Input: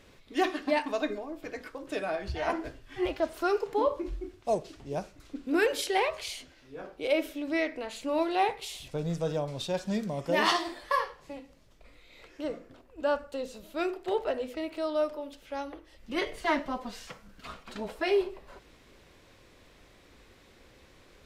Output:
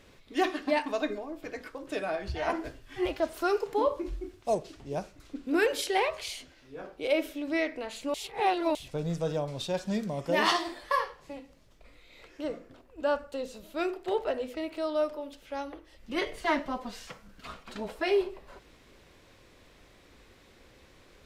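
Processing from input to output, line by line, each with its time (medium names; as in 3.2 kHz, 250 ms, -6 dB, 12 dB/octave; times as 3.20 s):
2.54–4.55 s: treble shelf 6.4 kHz +4.5 dB
8.14–8.75 s: reverse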